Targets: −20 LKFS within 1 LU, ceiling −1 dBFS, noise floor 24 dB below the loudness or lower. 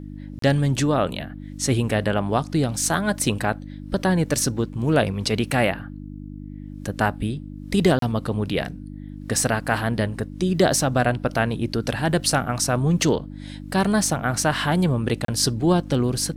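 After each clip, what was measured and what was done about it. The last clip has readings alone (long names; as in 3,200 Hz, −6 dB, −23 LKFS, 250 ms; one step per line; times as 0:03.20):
number of dropouts 3; longest dropout 33 ms; mains hum 50 Hz; hum harmonics up to 300 Hz; level of the hum −33 dBFS; integrated loudness −22.5 LKFS; sample peak −5.5 dBFS; target loudness −20.0 LKFS
→ repair the gap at 0:00.39/0:07.99/0:15.25, 33 ms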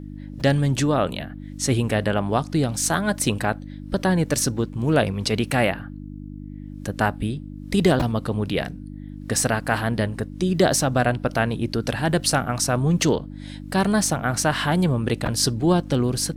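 number of dropouts 0; mains hum 50 Hz; hum harmonics up to 300 Hz; level of the hum −33 dBFS
→ hum removal 50 Hz, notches 6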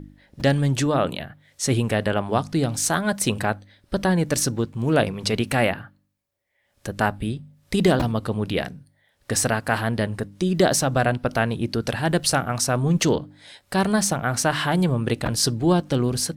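mains hum none found; integrated loudness −22.5 LKFS; sample peak −5.5 dBFS; target loudness −20.0 LKFS
→ level +2.5 dB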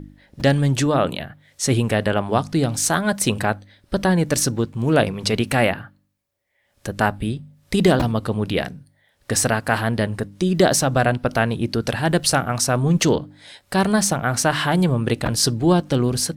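integrated loudness −20.0 LKFS; sample peak −3.0 dBFS; background noise floor −64 dBFS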